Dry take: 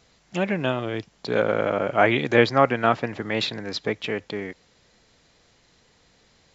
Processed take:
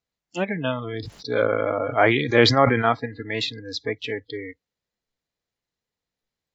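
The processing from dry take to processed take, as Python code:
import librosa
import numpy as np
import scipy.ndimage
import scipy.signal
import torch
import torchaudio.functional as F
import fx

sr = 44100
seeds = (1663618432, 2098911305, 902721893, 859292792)

y = fx.dmg_crackle(x, sr, seeds[0], per_s=220.0, level_db=-54.0)
y = fx.noise_reduce_blind(y, sr, reduce_db=28)
y = fx.sustainer(y, sr, db_per_s=52.0, at=(0.87, 2.89))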